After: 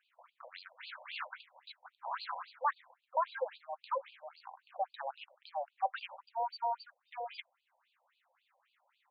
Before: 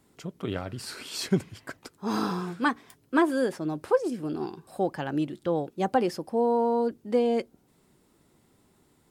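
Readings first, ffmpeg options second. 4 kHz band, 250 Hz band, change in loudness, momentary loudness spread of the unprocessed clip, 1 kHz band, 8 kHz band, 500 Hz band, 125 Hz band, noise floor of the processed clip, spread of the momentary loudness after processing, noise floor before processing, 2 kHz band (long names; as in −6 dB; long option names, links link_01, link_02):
−9.5 dB, below −40 dB, −11.5 dB, 12 LU, −5.0 dB, below −35 dB, −16.0 dB, below −40 dB, −82 dBFS, 16 LU, −65 dBFS, −10.5 dB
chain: -af "acrusher=samples=8:mix=1:aa=0.000001,highpass=360,afftfilt=real='re*between(b*sr/1024,690*pow(3500/690,0.5+0.5*sin(2*PI*3.7*pts/sr))/1.41,690*pow(3500/690,0.5+0.5*sin(2*PI*3.7*pts/sr))*1.41)':imag='im*between(b*sr/1024,690*pow(3500/690,0.5+0.5*sin(2*PI*3.7*pts/sr))/1.41,690*pow(3500/690,0.5+0.5*sin(2*PI*3.7*pts/sr))*1.41)':win_size=1024:overlap=0.75,volume=-1dB"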